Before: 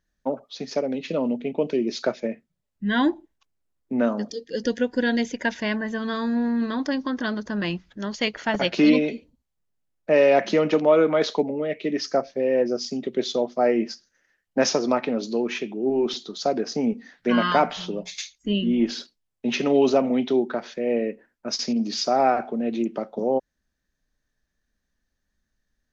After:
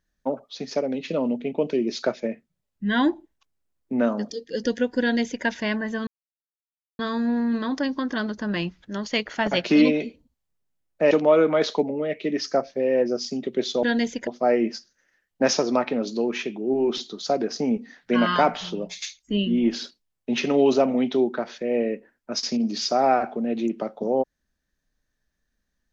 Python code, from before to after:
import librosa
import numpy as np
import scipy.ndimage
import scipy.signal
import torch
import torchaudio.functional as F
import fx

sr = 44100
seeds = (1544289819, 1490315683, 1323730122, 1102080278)

y = fx.edit(x, sr, fx.duplicate(start_s=5.01, length_s=0.44, to_s=13.43),
    fx.insert_silence(at_s=6.07, length_s=0.92),
    fx.cut(start_s=10.19, length_s=0.52), tone=tone)